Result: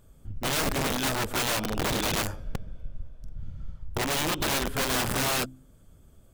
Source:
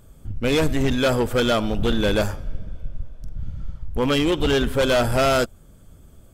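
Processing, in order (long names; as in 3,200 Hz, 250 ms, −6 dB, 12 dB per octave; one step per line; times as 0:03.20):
hum removal 64.69 Hz, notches 5
wrap-around overflow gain 16 dB
level −7 dB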